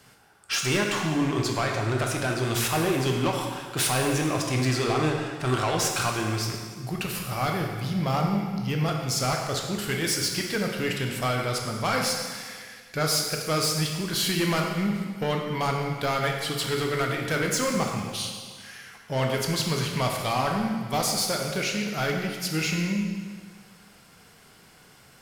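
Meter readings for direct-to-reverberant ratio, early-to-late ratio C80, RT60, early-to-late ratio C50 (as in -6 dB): 1.0 dB, 4.5 dB, 1.7 s, 3.0 dB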